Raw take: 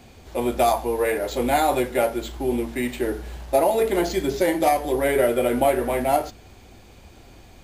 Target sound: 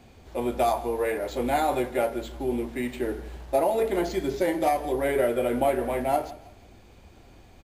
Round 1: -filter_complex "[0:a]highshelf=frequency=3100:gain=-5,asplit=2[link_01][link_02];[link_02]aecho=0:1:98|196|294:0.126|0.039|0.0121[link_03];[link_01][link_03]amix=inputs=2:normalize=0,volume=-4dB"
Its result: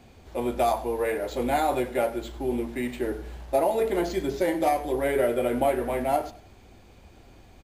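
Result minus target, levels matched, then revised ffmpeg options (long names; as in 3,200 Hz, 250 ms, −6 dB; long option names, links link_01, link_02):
echo 66 ms early
-filter_complex "[0:a]highshelf=frequency=3100:gain=-5,asplit=2[link_01][link_02];[link_02]aecho=0:1:164|328|492:0.126|0.039|0.0121[link_03];[link_01][link_03]amix=inputs=2:normalize=0,volume=-4dB"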